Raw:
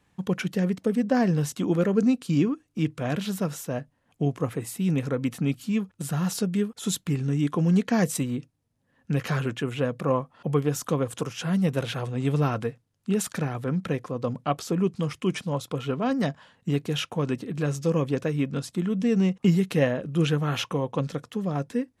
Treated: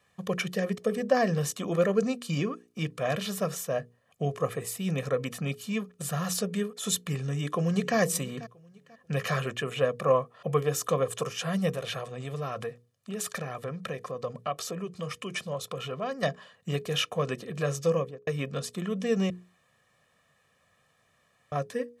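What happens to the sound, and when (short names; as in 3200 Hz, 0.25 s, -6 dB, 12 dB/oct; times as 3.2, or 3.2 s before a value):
7.19–7.97 echo throw 0.49 s, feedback 30%, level -17.5 dB
11.7–16.23 compressor 2.5:1, threshold -30 dBFS
17.85–18.27 studio fade out
19.3–21.52 room tone
whole clip: HPF 260 Hz 6 dB/oct; notches 60/120/180/240/300/360/420/480 Hz; comb 1.7 ms, depth 69%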